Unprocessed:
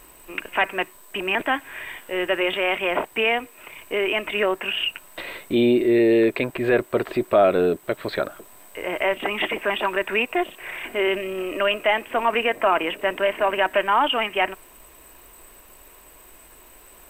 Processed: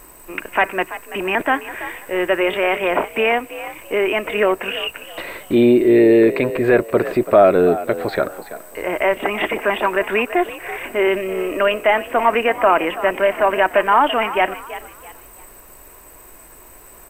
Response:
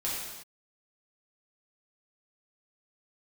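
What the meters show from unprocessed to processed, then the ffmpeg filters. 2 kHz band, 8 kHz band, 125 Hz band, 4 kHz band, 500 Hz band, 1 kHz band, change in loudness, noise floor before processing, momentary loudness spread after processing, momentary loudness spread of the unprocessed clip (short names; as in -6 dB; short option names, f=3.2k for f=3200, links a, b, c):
+3.0 dB, n/a, +5.5 dB, -1.5 dB, +5.5 dB, +5.5 dB, +5.0 dB, -49 dBFS, 15 LU, 12 LU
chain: -filter_complex "[0:a]equalizer=f=3.3k:w=1.7:g=-8.5,asplit=2[a][b];[b]asplit=3[c][d][e];[c]adelay=333,afreqshift=56,volume=-14dB[f];[d]adelay=666,afreqshift=112,volume=-23.9dB[g];[e]adelay=999,afreqshift=168,volume=-33.8dB[h];[f][g][h]amix=inputs=3:normalize=0[i];[a][i]amix=inputs=2:normalize=0,volume=5.5dB"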